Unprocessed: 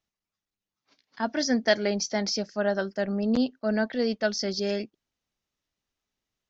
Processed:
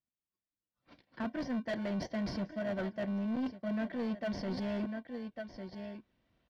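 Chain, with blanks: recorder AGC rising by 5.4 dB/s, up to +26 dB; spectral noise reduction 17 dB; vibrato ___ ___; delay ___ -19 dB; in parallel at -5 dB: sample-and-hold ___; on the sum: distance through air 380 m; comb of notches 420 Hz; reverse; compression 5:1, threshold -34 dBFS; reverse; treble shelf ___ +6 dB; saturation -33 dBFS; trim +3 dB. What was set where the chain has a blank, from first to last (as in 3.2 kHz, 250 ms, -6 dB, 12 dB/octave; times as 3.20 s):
2.4 Hz, 37 cents, 1151 ms, 34×, 4.5 kHz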